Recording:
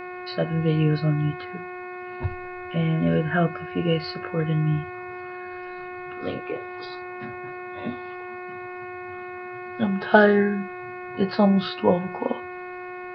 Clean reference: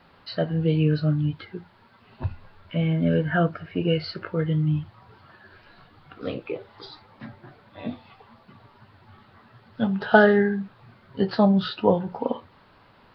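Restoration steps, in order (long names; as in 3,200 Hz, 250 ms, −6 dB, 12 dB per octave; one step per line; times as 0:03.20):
hum removal 362.2 Hz, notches 7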